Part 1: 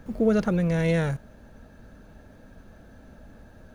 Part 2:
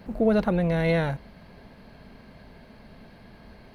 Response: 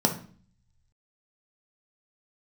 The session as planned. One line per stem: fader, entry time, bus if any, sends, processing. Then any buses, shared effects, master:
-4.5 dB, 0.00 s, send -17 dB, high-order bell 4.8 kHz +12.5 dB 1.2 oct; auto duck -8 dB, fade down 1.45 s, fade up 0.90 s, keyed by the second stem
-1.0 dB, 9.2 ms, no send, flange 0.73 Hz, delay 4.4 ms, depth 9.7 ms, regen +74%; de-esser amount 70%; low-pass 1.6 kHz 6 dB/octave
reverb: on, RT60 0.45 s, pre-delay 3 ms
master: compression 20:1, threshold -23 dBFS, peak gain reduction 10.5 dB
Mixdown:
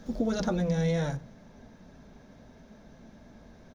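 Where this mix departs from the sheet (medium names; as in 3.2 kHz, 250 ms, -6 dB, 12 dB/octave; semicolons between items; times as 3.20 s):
stem 1: send -17 dB -> -23 dB; stem 2: polarity flipped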